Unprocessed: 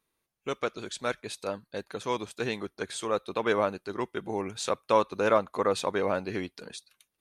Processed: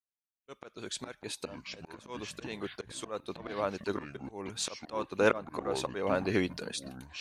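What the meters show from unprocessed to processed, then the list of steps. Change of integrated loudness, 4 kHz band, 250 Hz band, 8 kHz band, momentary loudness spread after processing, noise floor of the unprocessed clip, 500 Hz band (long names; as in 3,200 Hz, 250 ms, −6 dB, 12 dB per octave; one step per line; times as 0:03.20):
−5.0 dB, −1.5 dB, −2.0 dB, −0.5 dB, 15 LU, −82 dBFS, −5.5 dB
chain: volume swells 499 ms
downward expander −57 dBFS
delay with pitch and tempo change per echo 289 ms, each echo −7 semitones, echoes 2, each echo −6 dB
level +4.5 dB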